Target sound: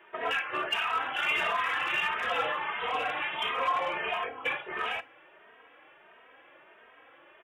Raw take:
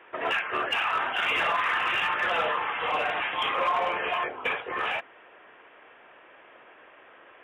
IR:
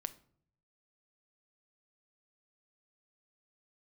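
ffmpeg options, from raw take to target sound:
-filter_complex "[0:a]asplit=2[link_01][link_02];[1:a]atrim=start_sample=2205,highshelf=frequency=3000:gain=11.5[link_03];[link_02][link_03]afir=irnorm=-1:irlink=0,volume=-3.5dB[link_04];[link_01][link_04]amix=inputs=2:normalize=0,asplit=2[link_05][link_06];[link_06]adelay=2.9,afreqshift=1.5[link_07];[link_05][link_07]amix=inputs=2:normalize=1,volume=-5dB"

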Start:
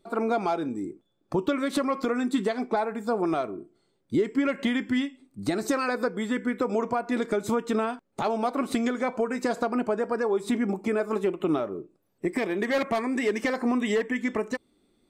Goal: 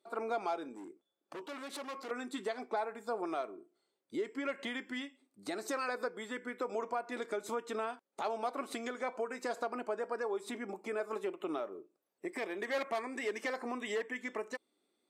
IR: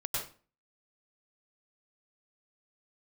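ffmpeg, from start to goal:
-filter_complex "[0:a]asettb=1/sr,asplit=3[link_01][link_02][link_03];[link_01]atrim=end=0.744[link_04];[link_02]atrim=start=0.74:end=2.11,asetpts=PTS-STARTPTS,afade=type=in:duration=0.004:curve=qsin,afade=type=out:start_time=1.366:duration=0.004:curve=qsin,asoftclip=type=hard:threshold=-30dB[link_05];[link_03]atrim=start=2.106[link_06];[link_04][link_05]acrossfade=duration=0.004:curve1=hsin:curve2=qsin[link_07];[link_07][link_06]acrossfade=duration=0.004:curve1=qsin:curve2=hsin,highpass=410[link_08];[1:a]atrim=start_sample=2205,atrim=end_sample=3528,asetrate=25578,aresample=44100[link_09];[link_08][link_09]afir=irnorm=-1:irlink=0,volume=-8.5dB"

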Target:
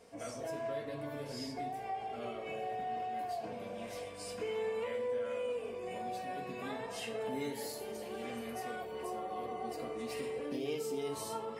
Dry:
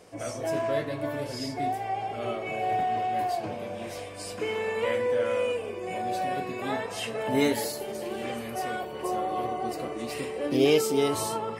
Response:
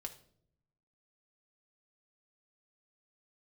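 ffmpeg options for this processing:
-filter_complex "[0:a]acompressor=threshold=-30dB:ratio=4[link_01];[1:a]atrim=start_sample=2205[link_02];[link_01][link_02]afir=irnorm=-1:irlink=0,volume=-3.5dB"

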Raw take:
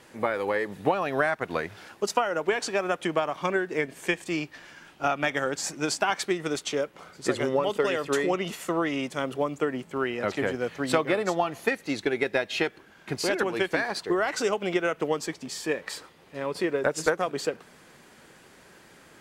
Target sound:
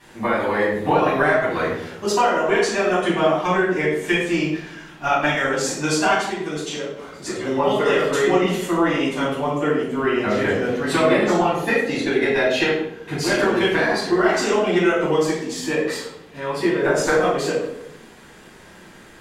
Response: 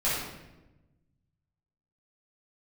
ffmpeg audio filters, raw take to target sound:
-filter_complex "[0:a]asplit=3[link_01][link_02][link_03];[link_01]afade=type=out:start_time=6.17:duration=0.02[link_04];[link_02]acompressor=threshold=-31dB:ratio=6,afade=type=in:start_time=6.17:duration=0.02,afade=type=out:start_time=7.45:duration=0.02[link_05];[link_03]afade=type=in:start_time=7.45:duration=0.02[link_06];[link_04][link_05][link_06]amix=inputs=3:normalize=0[link_07];[1:a]atrim=start_sample=2205,asetrate=66150,aresample=44100[link_08];[link_07][link_08]afir=irnorm=-1:irlink=0"

